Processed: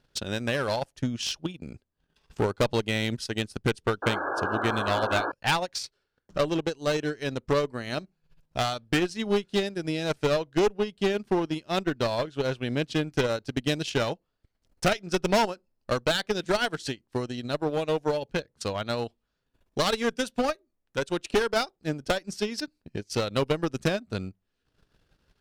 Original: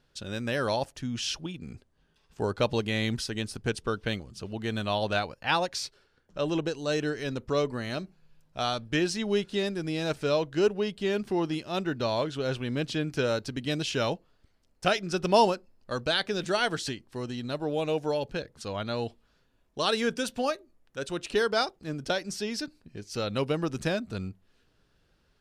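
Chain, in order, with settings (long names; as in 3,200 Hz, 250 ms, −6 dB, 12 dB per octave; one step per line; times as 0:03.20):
transient designer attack +10 dB, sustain −12 dB
asymmetric clip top −24.5 dBFS, bottom −14 dBFS
sound drawn into the spectrogram noise, 0:04.02–0:05.32, 260–1,700 Hz −30 dBFS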